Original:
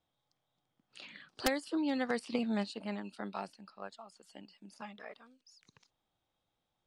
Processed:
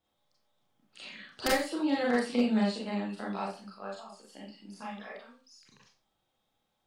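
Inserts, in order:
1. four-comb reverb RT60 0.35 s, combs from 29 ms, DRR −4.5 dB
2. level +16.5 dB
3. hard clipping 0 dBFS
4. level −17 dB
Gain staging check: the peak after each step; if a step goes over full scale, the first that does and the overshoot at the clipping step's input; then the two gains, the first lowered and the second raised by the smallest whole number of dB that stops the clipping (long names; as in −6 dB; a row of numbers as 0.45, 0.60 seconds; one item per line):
−13.5, +3.0, 0.0, −17.0 dBFS
step 2, 3.0 dB
step 2 +13.5 dB, step 4 −14 dB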